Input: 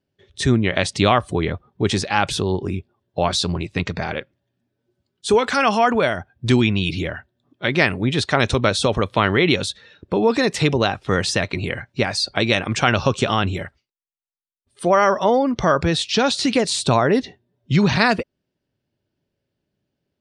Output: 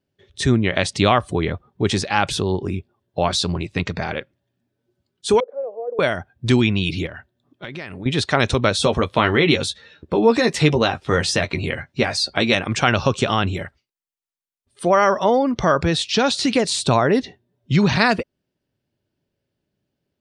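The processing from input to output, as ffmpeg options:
ffmpeg -i in.wav -filter_complex "[0:a]asettb=1/sr,asplit=3[link_01][link_02][link_03];[link_01]atrim=end=5.404[link_04];[link_02]atrim=start=5.4:end=5.99,asetpts=PTS-STARTPTS,afade=type=in:duration=0.004:curve=qsin,afade=type=out:start_time=0.586:duration=0.004:curve=qsin,asuperpass=centerf=510:order=4:qfactor=4.4[link_05];[link_03]atrim=start=5.986[link_06];[link_04][link_05]acrossfade=duration=0.004:curve1=hsin:curve2=qsin[link_07];[link_07][link_06]acrossfade=duration=0.004:curve1=qsin:curve2=hsin,asettb=1/sr,asplit=3[link_08][link_09][link_10];[link_08]atrim=end=7.064[link_11];[link_09]atrim=start=7.06:end=8.06,asetpts=PTS-STARTPTS,afade=type=in:duration=0.004:curve=qsin,afade=type=out:start_time=0.996:duration=0.004:curve=qsin,acompressor=threshold=-30dB:ratio=5:attack=3.2:release=140:knee=1:detection=peak[link_12];[link_10]atrim=start=8.056[link_13];[link_11][link_12]acrossfade=duration=0.004:curve1=hsin:curve2=qsin[link_14];[link_14][link_13]acrossfade=duration=0.004:curve1=qsin:curve2=hsin,asettb=1/sr,asplit=3[link_15][link_16][link_17];[link_15]atrim=end=8.784[link_18];[link_16]atrim=start=8.78:end=12.55,asetpts=PTS-STARTPTS,afade=type=in:duration=0.004:curve=qsin,afade=type=out:start_time=3.766:duration=0.004:curve=qsin,asplit=2[link_19][link_20];[link_20]adelay=13,volume=-6.5dB[link_21];[link_19][link_21]amix=inputs=2:normalize=0,atrim=end_sample=166257[link_22];[link_17]atrim=start=12.546[link_23];[link_18][link_22]acrossfade=duration=0.004:curve1=hsin:curve2=qsin[link_24];[link_24][link_23]acrossfade=duration=0.004:curve1=qsin:curve2=hsin" out.wav

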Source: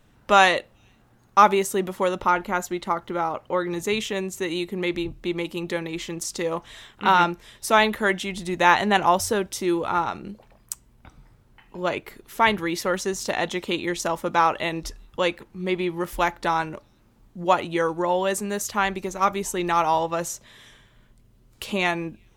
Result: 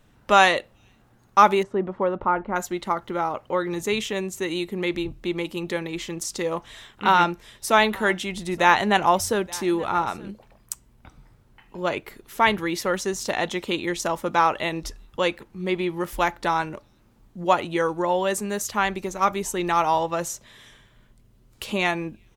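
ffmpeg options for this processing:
ffmpeg -i in.wav -filter_complex "[0:a]asettb=1/sr,asplit=3[link_01][link_02][link_03];[link_01]atrim=end=1.634[link_04];[link_02]atrim=start=1.63:end=2.56,asetpts=PTS-STARTPTS,afade=type=in:duration=0.004:curve=qsin,afade=type=out:start_time=0.926:duration=0.004:curve=qsin,lowpass=1300[link_05];[link_03]atrim=start=2.556[link_06];[link_04][link_05]acrossfade=duration=0.004:curve1=hsin:curve2=qsin[link_07];[link_07][link_06]acrossfade=duration=0.004:curve1=qsin:curve2=hsin,asplit=3[link_08][link_09][link_10];[link_08]afade=type=out:start_time=7.76:duration=0.02[link_11];[link_09]aecho=1:1:875:0.0794,afade=type=in:start_time=7.76:duration=0.02,afade=type=out:start_time=10.31:duration=0.02[link_12];[link_10]afade=type=in:start_time=10.31:duration=0.02[link_13];[link_11][link_12][link_13]amix=inputs=3:normalize=0" out.wav

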